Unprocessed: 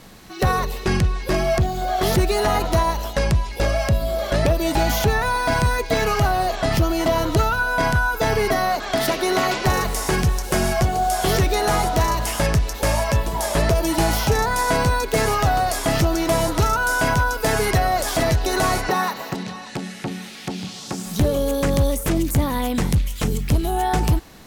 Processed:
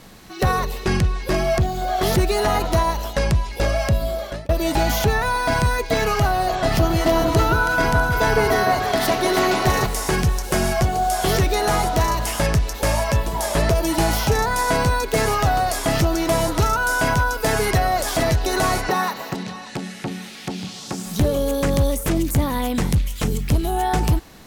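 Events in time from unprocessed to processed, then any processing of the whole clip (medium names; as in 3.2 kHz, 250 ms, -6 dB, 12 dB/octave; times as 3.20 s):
4.06–4.49 s: fade out
6.31–9.86 s: echo whose repeats swap between lows and highs 162 ms, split 1.4 kHz, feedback 68%, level -3.5 dB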